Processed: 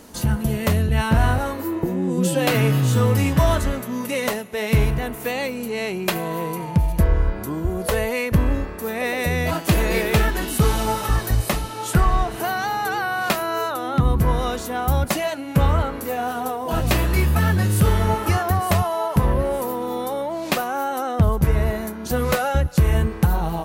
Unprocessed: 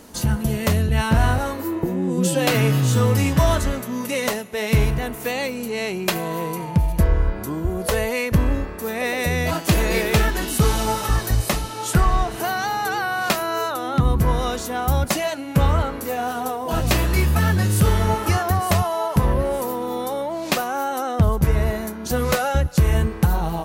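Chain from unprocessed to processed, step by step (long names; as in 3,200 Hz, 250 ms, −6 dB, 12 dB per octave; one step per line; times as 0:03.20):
dynamic equaliser 6,000 Hz, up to −4 dB, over −43 dBFS, Q 1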